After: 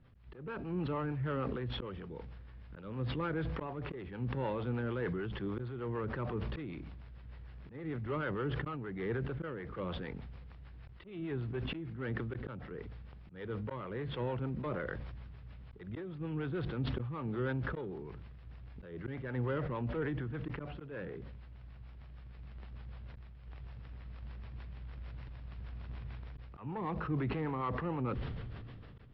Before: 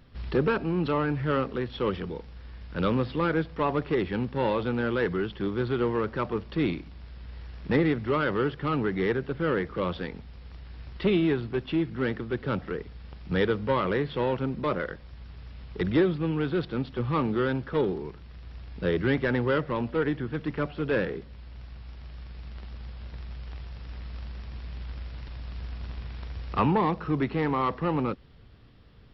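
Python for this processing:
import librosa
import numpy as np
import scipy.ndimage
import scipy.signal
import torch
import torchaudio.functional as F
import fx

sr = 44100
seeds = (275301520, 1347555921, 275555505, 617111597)

y = scipy.signal.sosfilt(scipy.signal.butter(2, 2800.0, 'lowpass', fs=sr, output='sos'), x)
y = fx.peak_eq(y, sr, hz=120.0, db=7.0, octaves=0.55)
y = fx.auto_swell(y, sr, attack_ms=373.0)
y = fx.harmonic_tremolo(y, sr, hz=6.6, depth_pct=50, crossover_hz=470.0)
y = fx.sustainer(y, sr, db_per_s=22.0)
y = y * librosa.db_to_amplitude(-8.5)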